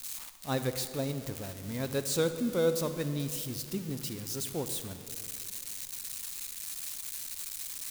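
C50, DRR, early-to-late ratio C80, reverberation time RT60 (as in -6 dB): 10.0 dB, 9.5 dB, 10.5 dB, 2.4 s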